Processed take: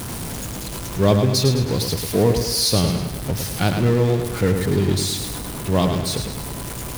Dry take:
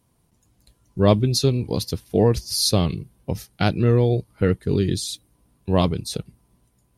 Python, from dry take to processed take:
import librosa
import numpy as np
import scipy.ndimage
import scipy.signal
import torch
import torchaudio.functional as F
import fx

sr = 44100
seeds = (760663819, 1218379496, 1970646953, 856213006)

y = x + 0.5 * 10.0 ** (-22.5 / 20.0) * np.sign(x)
y = fx.echo_feedback(y, sr, ms=106, feedback_pct=50, wet_db=-6.5)
y = y * 10.0 ** (-1.5 / 20.0)